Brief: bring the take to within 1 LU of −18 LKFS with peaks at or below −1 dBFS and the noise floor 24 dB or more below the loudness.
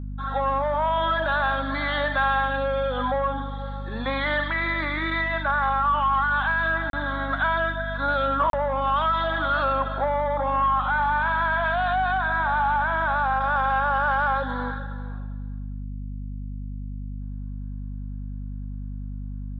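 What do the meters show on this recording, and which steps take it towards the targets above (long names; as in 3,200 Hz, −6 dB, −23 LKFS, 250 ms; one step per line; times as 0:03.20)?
number of dropouts 2; longest dropout 32 ms; mains hum 50 Hz; hum harmonics up to 250 Hz; level of the hum −30 dBFS; integrated loudness −23.5 LKFS; sample peak −13.0 dBFS; target loudness −18.0 LKFS
→ repair the gap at 0:06.90/0:08.50, 32 ms
hum removal 50 Hz, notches 5
level +5.5 dB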